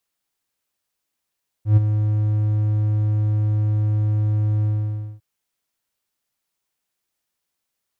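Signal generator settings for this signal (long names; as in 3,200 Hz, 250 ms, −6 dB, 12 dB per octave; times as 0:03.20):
note with an ADSR envelope triangle 106 Hz, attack 117 ms, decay 22 ms, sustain −8.5 dB, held 3.00 s, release 553 ms −6 dBFS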